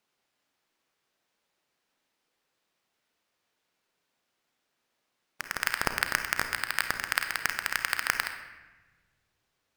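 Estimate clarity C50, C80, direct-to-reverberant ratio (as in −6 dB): 7.5 dB, 9.5 dB, 6.0 dB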